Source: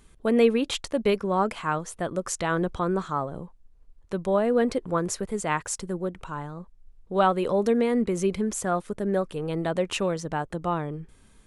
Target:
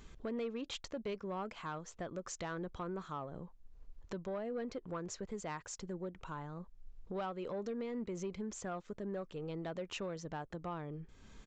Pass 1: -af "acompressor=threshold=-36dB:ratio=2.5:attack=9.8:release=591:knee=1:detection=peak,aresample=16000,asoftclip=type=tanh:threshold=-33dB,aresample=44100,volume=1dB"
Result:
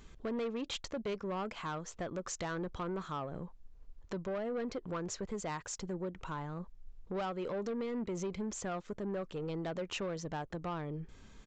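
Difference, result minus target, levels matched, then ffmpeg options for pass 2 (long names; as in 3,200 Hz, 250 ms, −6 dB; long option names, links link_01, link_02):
downward compressor: peak gain reduction −5 dB
-af "acompressor=threshold=-44.5dB:ratio=2.5:attack=9.8:release=591:knee=1:detection=peak,aresample=16000,asoftclip=type=tanh:threshold=-33dB,aresample=44100,volume=1dB"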